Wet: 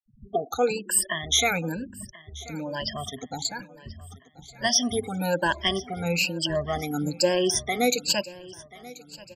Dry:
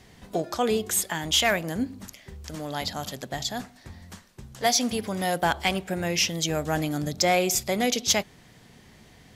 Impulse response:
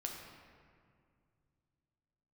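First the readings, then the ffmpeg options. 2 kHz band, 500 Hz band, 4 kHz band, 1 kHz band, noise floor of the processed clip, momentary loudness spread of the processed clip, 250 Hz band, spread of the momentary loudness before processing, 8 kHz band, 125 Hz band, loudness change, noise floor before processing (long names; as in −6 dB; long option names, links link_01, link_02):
0.0 dB, +1.0 dB, +0.5 dB, −2.0 dB, −55 dBFS, 21 LU, −1.0 dB, 15 LU, 0.0 dB, −1.0 dB, 0.0 dB, −54 dBFS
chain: -filter_complex "[0:a]afftfilt=real='re*pow(10,23/40*sin(2*PI*(1.3*log(max(b,1)*sr/1024/100)/log(2)-(1.1)*(pts-256)/sr)))':imag='im*pow(10,23/40*sin(2*PI*(1.3*log(max(b,1)*sr/1024/100)/log(2)-(1.1)*(pts-256)/sr)))':win_size=1024:overlap=0.75,afftfilt=real='re*gte(hypot(re,im),0.0355)':imag='im*gte(hypot(re,im),0.0355)':win_size=1024:overlap=0.75,asplit=2[link_01][link_02];[link_02]aecho=0:1:1034|2068|3102|4136:0.1|0.052|0.027|0.0141[link_03];[link_01][link_03]amix=inputs=2:normalize=0,volume=-5dB"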